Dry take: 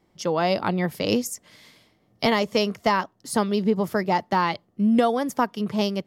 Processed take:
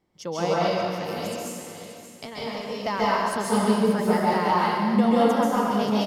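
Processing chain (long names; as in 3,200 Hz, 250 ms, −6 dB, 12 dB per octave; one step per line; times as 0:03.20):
0:00.53–0:02.83: downward compressor, threshold −29 dBFS, peak gain reduction 12.5 dB
repeating echo 580 ms, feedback 24%, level −11 dB
dense smooth reverb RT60 1.8 s, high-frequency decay 0.9×, pre-delay 120 ms, DRR −7.5 dB
level −7.5 dB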